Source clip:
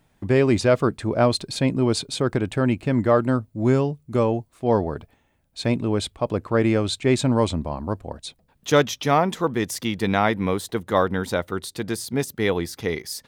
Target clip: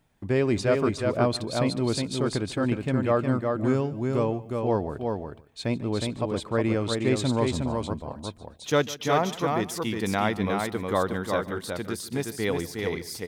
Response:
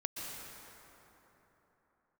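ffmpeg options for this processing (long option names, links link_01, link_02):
-filter_complex "[0:a]aecho=1:1:363:0.631,asplit=2[link_01][link_02];[1:a]atrim=start_sample=2205,afade=type=out:start_time=0.17:duration=0.01,atrim=end_sample=7938,adelay=147[link_03];[link_02][link_03]afir=irnorm=-1:irlink=0,volume=-16.5dB[link_04];[link_01][link_04]amix=inputs=2:normalize=0,volume=-5.5dB"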